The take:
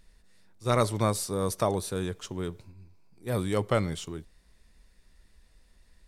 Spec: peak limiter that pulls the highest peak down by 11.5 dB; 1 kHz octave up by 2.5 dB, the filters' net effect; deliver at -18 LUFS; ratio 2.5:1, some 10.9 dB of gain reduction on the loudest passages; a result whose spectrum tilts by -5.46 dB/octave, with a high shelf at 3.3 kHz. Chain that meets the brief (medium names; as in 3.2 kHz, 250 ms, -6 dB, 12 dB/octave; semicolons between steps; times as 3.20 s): peaking EQ 1 kHz +4 dB; treble shelf 3.3 kHz -7 dB; compression 2.5:1, threshold -35 dBFS; trim +25 dB; peak limiter -5 dBFS